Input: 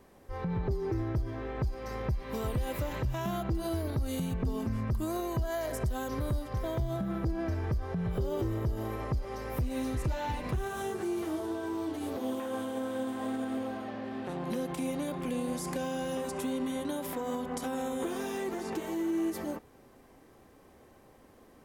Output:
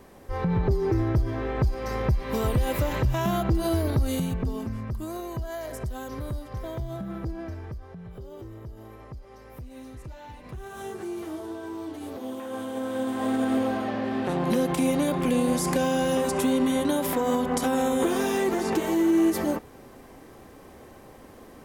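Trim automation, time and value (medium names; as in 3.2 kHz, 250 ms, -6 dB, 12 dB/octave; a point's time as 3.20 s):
4.01 s +8 dB
4.83 s -1 dB
7.29 s -1 dB
8.01 s -9.5 dB
10.39 s -9.5 dB
10.87 s -1 dB
12.31 s -1 dB
13.49 s +10 dB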